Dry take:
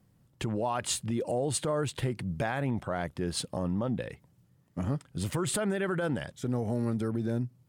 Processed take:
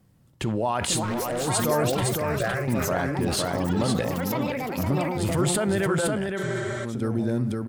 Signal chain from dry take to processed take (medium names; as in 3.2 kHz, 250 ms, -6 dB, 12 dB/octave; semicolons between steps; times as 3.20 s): ever faster or slower copies 607 ms, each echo +7 st, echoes 3, each echo -6 dB; 2.03–2.68 s: static phaser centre 920 Hz, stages 6; 6.06–7.02 s: compression, threshold -33 dBFS, peak gain reduction 7 dB; delay 512 ms -4.5 dB; 1.03–1.48 s: overload inside the chain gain 30 dB; 6.41–6.82 s: spectral replace 210–9500 Hz before; on a send at -15 dB: reverberation, pre-delay 3 ms; on the sum: decay stretcher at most 31 dB/s; trim +4.5 dB